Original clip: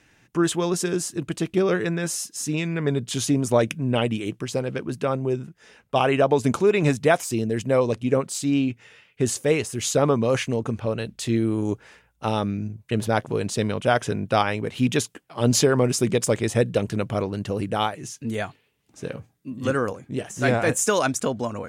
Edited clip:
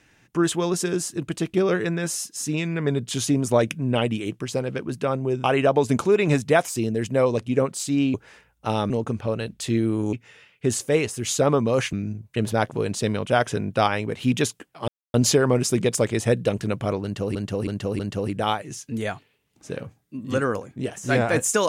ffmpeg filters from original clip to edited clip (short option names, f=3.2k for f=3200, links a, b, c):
-filter_complex "[0:a]asplit=10[a][b][c][d][e][f][g][h][i][j];[a]atrim=end=5.442[k];[b]atrim=start=5.988:end=8.692[l];[c]atrim=start=11.718:end=12.482[m];[d]atrim=start=10.488:end=11.722[n];[e]atrim=start=8.688:end=10.492[o];[f]atrim=start=12.478:end=15.43,asetpts=PTS-STARTPTS,afade=t=out:st=2.948:d=0.004:c=hsin,apad=pad_dur=0.26[p];[g]atrim=start=15.43:end=17.642,asetpts=PTS-STARTPTS,afade=t=in:d=0.004:c=hsin[q];[h]atrim=start=17.318:end=17.642[r];[i]atrim=start=17.318:end=17.642[s];[j]atrim=start=17.318[t];[k][l]acrossfade=d=0.004:c1=hsin:c2=hsin[u];[u][m]acrossfade=d=0.004:c1=hsin:c2=hsin[v];[v][n]acrossfade=d=0.004:c1=hsin:c2=hsin[w];[w][o]acrossfade=d=0.004:c1=hsin:c2=hsin[x];[p][q]concat=n=2:v=0:a=1[y];[x][y]acrossfade=d=0.004:c1=hsin:c2=hsin[z];[z][r]acrossfade=d=0.004:c1=hsin:c2=hsin[aa];[aa][s]acrossfade=d=0.004:c1=hsin:c2=hsin[ab];[ab][t]acrossfade=d=0.004:c1=hsin:c2=hsin"